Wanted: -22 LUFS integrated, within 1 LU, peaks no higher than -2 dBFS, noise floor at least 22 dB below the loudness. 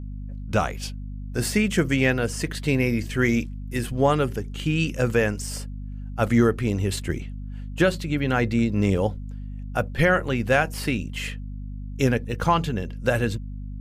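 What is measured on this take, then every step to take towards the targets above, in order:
hum 50 Hz; harmonics up to 250 Hz; hum level -31 dBFS; loudness -24.0 LUFS; peak -7.0 dBFS; loudness target -22.0 LUFS
-> notches 50/100/150/200/250 Hz; gain +2 dB

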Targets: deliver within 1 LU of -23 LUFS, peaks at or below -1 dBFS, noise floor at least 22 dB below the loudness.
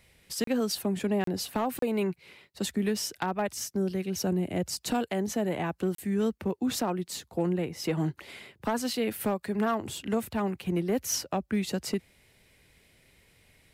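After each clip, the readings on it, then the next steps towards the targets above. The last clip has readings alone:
clipped 0.4%; flat tops at -20.0 dBFS; dropouts 4; longest dropout 33 ms; loudness -30.5 LUFS; peak -20.0 dBFS; loudness target -23.0 LUFS
-> clip repair -20 dBFS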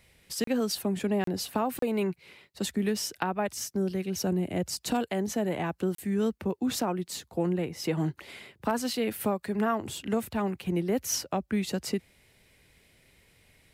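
clipped 0.0%; dropouts 4; longest dropout 33 ms
-> interpolate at 0.44/1.24/1.79/5.95, 33 ms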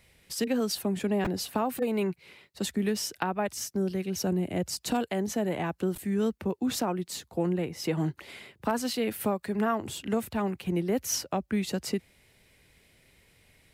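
dropouts 0; loudness -30.5 LUFS; peak -12.0 dBFS; loudness target -23.0 LUFS
-> gain +7.5 dB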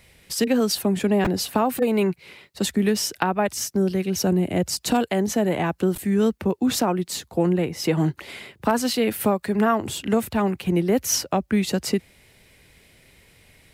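loudness -23.0 LUFS; peak -4.5 dBFS; noise floor -57 dBFS

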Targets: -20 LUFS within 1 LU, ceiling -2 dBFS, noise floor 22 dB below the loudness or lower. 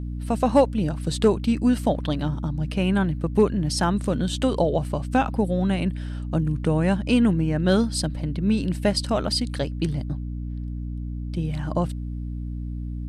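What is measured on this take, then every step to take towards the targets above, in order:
hum 60 Hz; harmonics up to 300 Hz; hum level -28 dBFS; loudness -24.0 LUFS; peak -7.0 dBFS; loudness target -20.0 LUFS
-> de-hum 60 Hz, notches 5; gain +4 dB

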